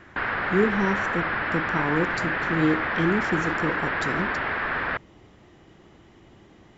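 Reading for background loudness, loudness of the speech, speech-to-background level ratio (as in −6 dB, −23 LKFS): −26.0 LKFS, −27.5 LKFS, −1.5 dB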